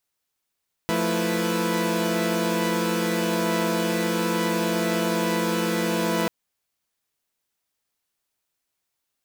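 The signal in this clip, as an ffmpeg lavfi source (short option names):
-f lavfi -i "aevalsrc='0.0562*((2*mod(174.61*t,1)-1)+(2*mod(220*t,1)-1)+(2*mod(329.63*t,1)-1)+(2*mod(493.88*t,1)-1))':d=5.39:s=44100"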